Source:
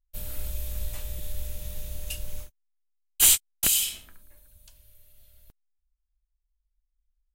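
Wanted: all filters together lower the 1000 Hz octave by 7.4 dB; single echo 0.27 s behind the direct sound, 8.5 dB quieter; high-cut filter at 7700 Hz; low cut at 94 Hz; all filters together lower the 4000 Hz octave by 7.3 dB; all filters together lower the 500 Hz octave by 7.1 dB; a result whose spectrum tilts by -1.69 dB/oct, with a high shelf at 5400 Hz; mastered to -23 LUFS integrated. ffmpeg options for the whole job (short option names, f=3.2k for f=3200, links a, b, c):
-af "highpass=94,lowpass=7.7k,equalizer=f=500:t=o:g=-6.5,equalizer=f=1k:t=o:g=-7.5,equalizer=f=4k:t=o:g=-6.5,highshelf=f=5.4k:g=-7,aecho=1:1:270:0.376,volume=12.5dB"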